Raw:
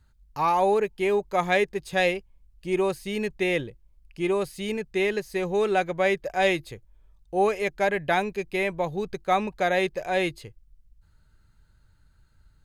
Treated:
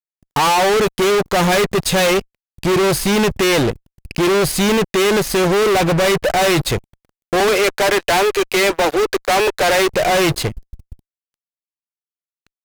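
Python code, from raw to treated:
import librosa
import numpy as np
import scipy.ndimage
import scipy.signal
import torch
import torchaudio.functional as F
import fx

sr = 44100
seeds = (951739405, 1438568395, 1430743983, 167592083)

y = fx.steep_highpass(x, sr, hz=300.0, slope=96, at=(7.4, 9.89))
y = fx.fuzz(y, sr, gain_db=43.0, gate_db=-48.0)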